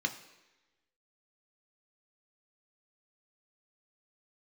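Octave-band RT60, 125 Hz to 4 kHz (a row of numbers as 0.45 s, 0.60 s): 0.85 s, 1.0 s, 1.1 s, 1.1 s, 1.2 s, 1.1 s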